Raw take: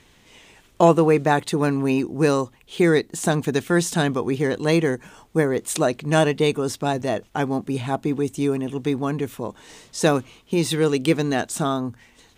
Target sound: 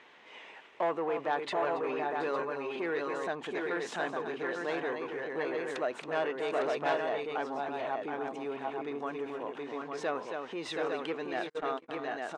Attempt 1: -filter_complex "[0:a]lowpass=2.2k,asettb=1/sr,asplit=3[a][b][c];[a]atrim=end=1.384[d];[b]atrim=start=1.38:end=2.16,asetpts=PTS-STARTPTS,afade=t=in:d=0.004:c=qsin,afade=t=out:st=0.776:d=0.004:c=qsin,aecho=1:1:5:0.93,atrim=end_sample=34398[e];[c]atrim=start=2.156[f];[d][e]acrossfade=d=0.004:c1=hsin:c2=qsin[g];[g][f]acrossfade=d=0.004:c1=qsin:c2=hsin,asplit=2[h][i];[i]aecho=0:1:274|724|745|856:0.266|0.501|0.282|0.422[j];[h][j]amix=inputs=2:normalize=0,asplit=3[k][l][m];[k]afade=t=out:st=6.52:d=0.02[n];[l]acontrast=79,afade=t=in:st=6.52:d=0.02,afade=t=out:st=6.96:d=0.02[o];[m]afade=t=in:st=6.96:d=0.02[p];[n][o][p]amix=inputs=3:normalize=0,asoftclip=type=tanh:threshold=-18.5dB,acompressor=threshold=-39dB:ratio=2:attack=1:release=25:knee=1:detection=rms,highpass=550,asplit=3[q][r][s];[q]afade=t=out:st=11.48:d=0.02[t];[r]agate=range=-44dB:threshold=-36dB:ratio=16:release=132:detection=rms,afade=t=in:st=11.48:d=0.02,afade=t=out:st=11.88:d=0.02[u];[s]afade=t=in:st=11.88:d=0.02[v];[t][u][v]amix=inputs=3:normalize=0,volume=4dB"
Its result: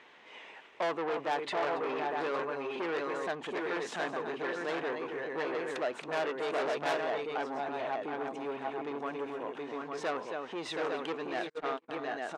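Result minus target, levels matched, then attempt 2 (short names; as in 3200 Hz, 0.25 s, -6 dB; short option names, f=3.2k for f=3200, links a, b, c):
soft clip: distortion +9 dB
-filter_complex "[0:a]lowpass=2.2k,asettb=1/sr,asplit=3[a][b][c];[a]atrim=end=1.384[d];[b]atrim=start=1.38:end=2.16,asetpts=PTS-STARTPTS,afade=t=in:d=0.004:c=qsin,afade=t=out:st=0.776:d=0.004:c=qsin,aecho=1:1:5:0.93,atrim=end_sample=34398[e];[c]atrim=start=2.156[f];[d][e]acrossfade=d=0.004:c1=hsin:c2=qsin[g];[g][f]acrossfade=d=0.004:c1=qsin:c2=hsin,asplit=2[h][i];[i]aecho=0:1:274|724|745|856:0.266|0.501|0.282|0.422[j];[h][j]amix=inputs=2:normalize=0,asplit=3[k][l][m];[k]afade=t=out:st=6.52:d=0.02[n];[l]acontrast=79,afade=t=in:st=6.52:d=0.02,afade=t=out:st=6.96:d=0.02[o];[m]afade=t=in:st=6.96:d=0.02[p];[n][o][p]amix=inputs=3:normalize=0,asoftclip=type=tanh:threshold=-9.5dB,acompressor=threshold=-39dB:ratio=2:attack=1:release=25:knee=1:detection=rms,highpass=550,asplit=3[q][r][s];[q]afade=t=out:st=11.48:d=0.02[t];[r]agate=range=-44dB:threshold=-36dB:ratio=16:release=132:detection=rms,afade=t=in:st=11.48:d=0.02,afade=t=out:st=11.88:d=0.02[u];[s]afade=t=in:st=11.88:d=0.02[v];[t][u][v]amix=inputs=3:normalize=0,volume=4dB"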